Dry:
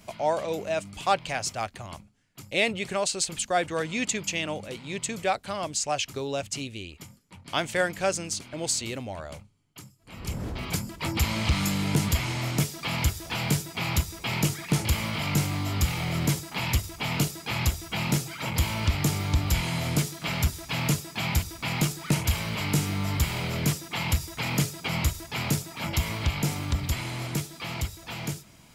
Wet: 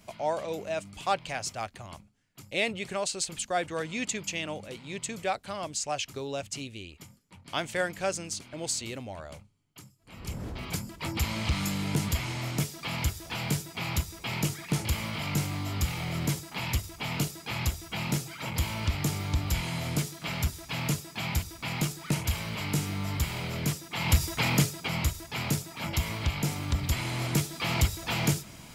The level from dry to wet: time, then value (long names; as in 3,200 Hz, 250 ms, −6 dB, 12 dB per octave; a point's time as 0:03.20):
0:23.92 −4 dB
0:24.24 +5.5 dB
0:24.93 −2.5 dB
0:26.56 −2.5 dB
0:27.91 +6.5 dB